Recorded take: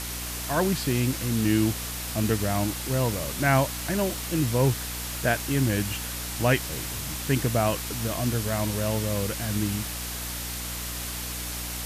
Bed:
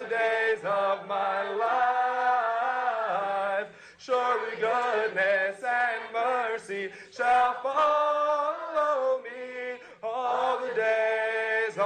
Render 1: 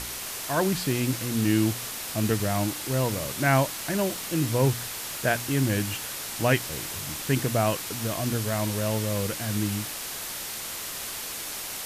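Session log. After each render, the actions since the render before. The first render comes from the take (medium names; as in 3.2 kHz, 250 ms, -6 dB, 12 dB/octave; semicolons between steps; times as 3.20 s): de-hum 60 Hz, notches 5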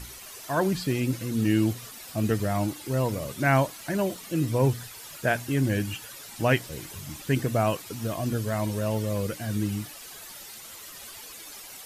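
noise reduction 12 dB, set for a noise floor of -35 dBFS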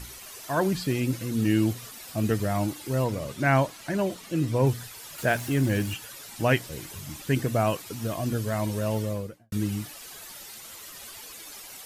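3.04–4.67 s: treble shelf 9.6 kHz -9 dB; 5.18–5.94 s: jump at every zero crossing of -38 dBFS; 8.97–9.52 s: studio fade out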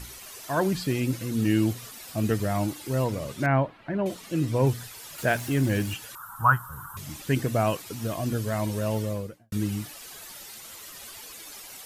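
3.46–4.06 s: distance through air 490 m; 6.15–6.97 s: FFT filter 130 Hz 0 dB, 340 Hz -21 dB, 630 Hz -14 dB, 990 Hz +13 dB, 1.4 kHz +15 dB, 2.2 kHz -28 dB, 3.2 kHz -19 dB, 4.7 kHz -23 dB, 13 kHz +2 dB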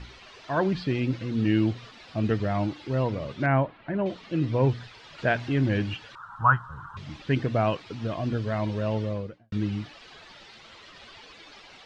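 low-pass 4.2 kHz 24 dB/octave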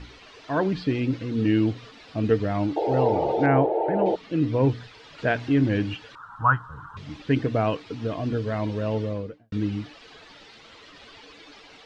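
2.76–4.16 s: painted sound noise 320–920 Hz -26 dBFS; small resonant body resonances 290/450 Hz, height 10 dB, ringing for 100 ms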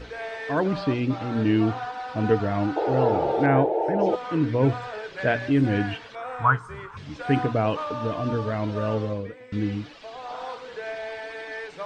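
add bed -8.5 dB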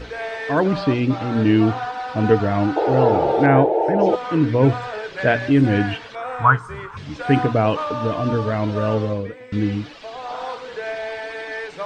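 trim +5.5 dB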